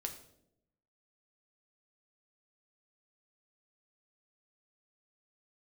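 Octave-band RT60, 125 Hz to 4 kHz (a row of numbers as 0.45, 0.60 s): 1.1, 1.1, 0.95, 0.60, 0.55, 0.55 s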